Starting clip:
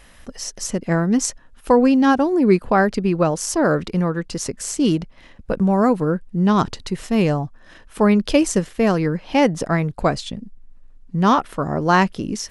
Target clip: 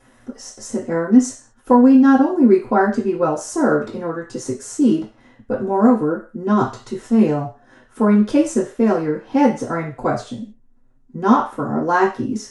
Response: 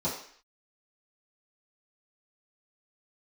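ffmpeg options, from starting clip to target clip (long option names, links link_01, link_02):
-filter_complex "[0:a]flanger=delay=7.6:depth=1.8:regen=69:speed=0.91:shape=triangular[link_01];[1:a]atrim=start_sample=2205,asetrate=66150,aresample=44100[link_02];[link_01][link_02]afir=irnorm=-1:irlink=0,volume=-4dB"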